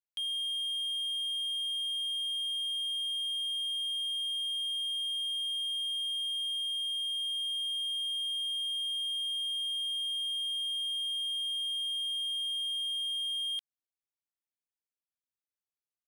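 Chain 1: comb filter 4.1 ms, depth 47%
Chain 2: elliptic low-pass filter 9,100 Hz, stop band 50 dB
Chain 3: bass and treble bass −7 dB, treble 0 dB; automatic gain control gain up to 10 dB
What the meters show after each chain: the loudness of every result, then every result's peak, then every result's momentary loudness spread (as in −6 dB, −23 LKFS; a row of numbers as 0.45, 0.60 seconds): −28.5, −31.0, −21.0 LKFS; −27.5, −31.0, −19.5 dBFS; 0, 0, 0 LU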